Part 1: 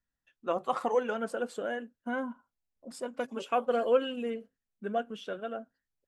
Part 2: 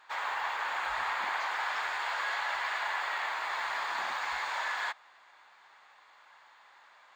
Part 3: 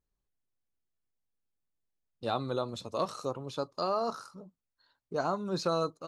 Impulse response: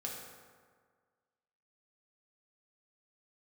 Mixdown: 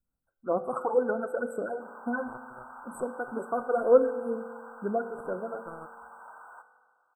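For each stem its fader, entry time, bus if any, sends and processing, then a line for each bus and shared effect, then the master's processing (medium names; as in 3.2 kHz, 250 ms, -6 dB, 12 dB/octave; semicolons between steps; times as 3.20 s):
+2.0 dB, 0.00 s, send -8.5 dB, phase shifter stages 12, 2.1 Hz, lowest notch 180–4100 Hz
-14.5 dB, 1.70 s, send -5 dB, band-stop 1.1 kHz, Q 20
-5.5 dB, 0.00 s, no send, power-law waveshaper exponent 3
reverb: on, RT60 1.7 s, pre-delay 3 ms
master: brick-wall FIR band-stop 1.6–7.7 kHz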